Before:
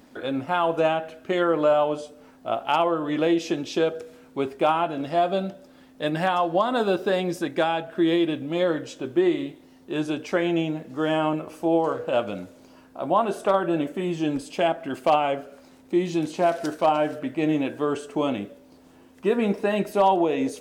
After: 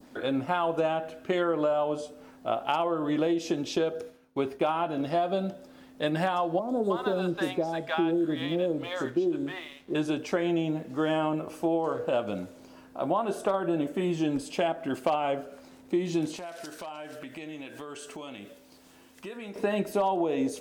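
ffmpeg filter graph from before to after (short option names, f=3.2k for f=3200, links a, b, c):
-filter_complex "[0:a]asettb=1/sr,asplit=3[a][b][c];[a]atrim=end=3.764[d];[b]atrim=start=3.76:end=5.36,asetpts=PTS-STARTPTS,afade=t=in:d=0.004:c=qsin,afade=t=out:st=1.596:d=0.004:c=qsin,bandreject=f=7.7k:w=7,agate=range=-33dB:threshold=-42dB:ratio=3:release=100:detection=peak[e];[c]atrim=start=5.356[f];[d][e]acrossfade=d=0.004:c1=hsin:c2=qsin[g];[g][f]acrossfade=d=0.004:c1=qsin:c2=hsin,asettb=1/sr,asplit=3[h][i][j];[h]atrim=end=6.594[k];[i]atrim=start=6.59:end=9.95,asetpts=PTS-STARTPTS,afade=t=in:d=0.004:c=qsin,afade=t=out:st=3.356:d=0.004:c=qsin,highshelf=f=6.1k:g=-5.5,acrossover=split=740|5900[l][m][n];[n]adelay=90[o];[m]adelay=310[p];[l][p][o]amix=inputs=3:normalize=0,atrim=end_sample=148176,aeval=exprs='sgn(val(0))*max(abs(val(0))-0.00168,0)':c=same[q];[j]atrim=start=9.946[r];[k][q]acrossfade=d=0.004:c1=hsin:c2=qsin[s];[s][r]acrossfade=d=0.004:c1=qsin:c2=hsin,asettb=1/sr,asplit=3[t][u][v];[t]atrim=end=16.364[w];[u]atrim=start=16.36:end=19.56,asetpts=PTS-STARTPTS,afade=t=in:d=0.004:c=qsin,afade=t=out:st=3.196:d=0.004:c=qsin,tiltshelf=f=1.4k:g=-6,acompressor=threshold=-38dB:ratio=5:attack=3.2:release=140:knee=1:detection=peak[x];[v]atrim=start=19.556[y];[w][x]acrossfade=d=0.004:c1=hsin:c2=qsin[z];[z][y]acrossfade=d=0.004:c1=qsin:c2=hsin,adynamicequalizer=threshold=0.00891:dfrequency=2200:dqfactor=0.91:tfrequency=2200:tqfactor=0.91:attack=5:release=100:ratio=0.375:range=3:mode=cutabove:tftype=bell,acompressor=threshold=-23dB:ratio=6"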